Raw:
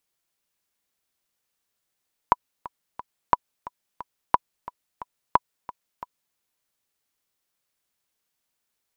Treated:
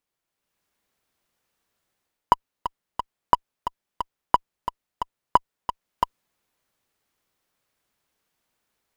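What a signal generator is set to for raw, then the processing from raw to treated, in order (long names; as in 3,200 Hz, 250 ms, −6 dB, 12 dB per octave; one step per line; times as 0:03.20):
click track 178 BPM, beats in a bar 3, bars 4, 984 Hz, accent 18.5 dB −2.5 dBFS
in parallel at −8.5 dB: fuzz pedal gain 41 dB, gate −41 dBFS
on the sum: automatic gain control gain up to 8.5 dB
high-shelf EQ 2,900 Hz −9 dB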